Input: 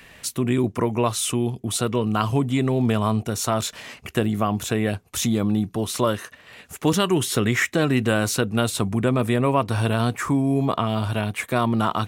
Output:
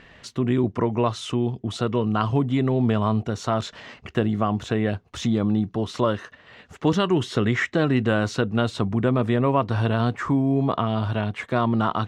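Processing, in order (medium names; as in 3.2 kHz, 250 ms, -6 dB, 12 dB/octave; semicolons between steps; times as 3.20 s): peaking EQ 2.4 kHz -6 dB 0.2 oct; vibrato 0.94 Hz 11 cents; distance through air 160 m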